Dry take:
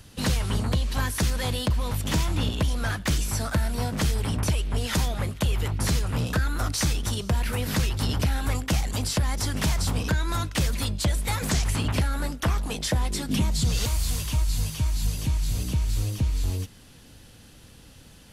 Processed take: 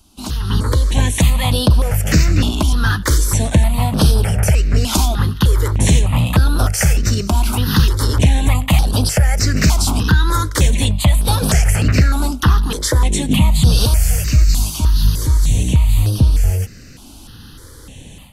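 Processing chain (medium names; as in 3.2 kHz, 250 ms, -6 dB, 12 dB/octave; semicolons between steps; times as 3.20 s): level rider gain up to 14 dB; stepped phaser 3.3 Hz 490–7100 Hz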